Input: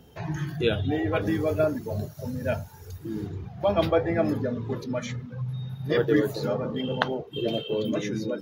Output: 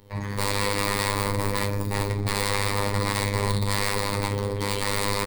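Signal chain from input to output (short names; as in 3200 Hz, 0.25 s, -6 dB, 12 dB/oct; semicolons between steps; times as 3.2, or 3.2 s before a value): cycle switcher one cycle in 3, muted; AGC gain up to 13.5 dB; dynamic EQ 800 Hz, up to -8 dB, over -32 dBFS, Q 1.4; on a send: split-band echo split 350 Hz, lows 0.626 s, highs 98 ms, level -3.5 dB; on the sum: wrapped overs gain 15.5 dB; limiter -22 dBFS, peak gain reduction 6.5 dB; shoebox room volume 52 m³, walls mixed, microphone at 0.58 m; robotiser 101 Hz; tempo 1.6×; ripple EQ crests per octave 0.95, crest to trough 10 dB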